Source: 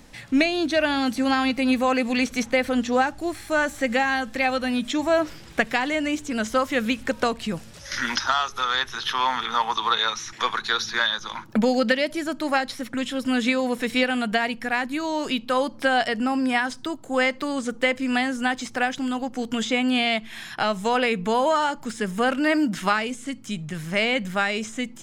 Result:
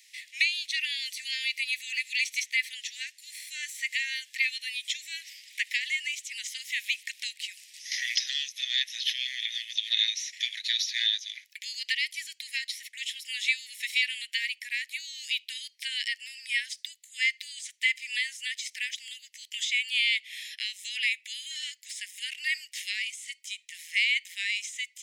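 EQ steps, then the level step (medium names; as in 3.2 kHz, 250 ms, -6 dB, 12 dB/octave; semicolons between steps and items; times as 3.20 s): steep high-pass 1.9 kHz 96 dB/octave; 0.0 dB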